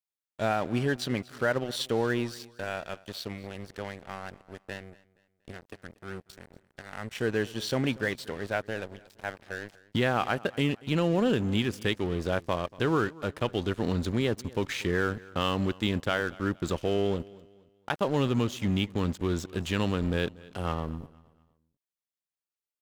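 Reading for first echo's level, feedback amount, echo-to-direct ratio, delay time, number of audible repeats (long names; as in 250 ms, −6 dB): −21.5 dB, 36%, −21.0 dB, 236 ms, 2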